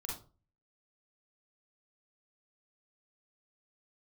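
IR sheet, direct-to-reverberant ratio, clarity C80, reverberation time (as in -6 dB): -3.0 dB, 11.0 dB, 0.35 s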